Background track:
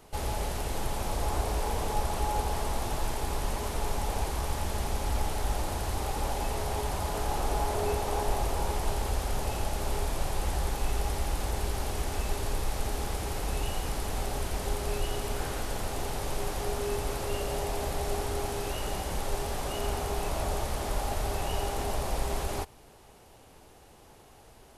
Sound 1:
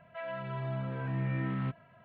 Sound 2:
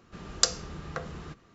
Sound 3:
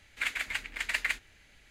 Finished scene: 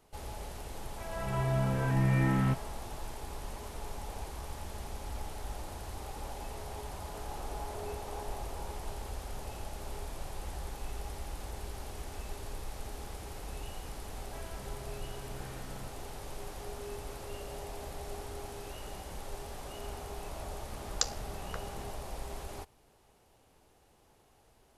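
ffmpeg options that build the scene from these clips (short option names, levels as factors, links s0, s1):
-filter_complex "[1:a]asplit=2[s0][s1];[0:a]volume=0.299[s2];[s0]dynaudnorm=f=260:g=3:m=6.31[s3];[s1]acompressor=threshold=0.0112:ratio=6:attack=3.2:release=140:knee=1:detection=peak[s4];[2:a]aeval=exprs='val(0)*sin(2*PI*34*n/s)':c=same[s5];[s3]atrim=end=2.04,asetpts=PTS-STARTPTS,volume=0.299,afade=t=in:d=0.004:c=hsin,afade=t=out:st=2.036:d=0.004:c=hsin,adelay=830[s6];[s4]atrim=end=2.04,asetpts=PTS-STARTPTS,volume=0.422,afade=t=in:d=0.004:c=hsin,afade=t=out:st=2.036:d=0.004:c=hsin,adelay=14180[s7];[s5]atrim=end=1.54,asetpts=PTS-STARTPTS,volume=0.501,afade=t=in:d=0.004:c=hsin,afade=t=out:st=1.536:d=0.004:c=hsin,adelay=20580[s8];[s2][s6][s7][s8]amix=inputs=4:normalize=0"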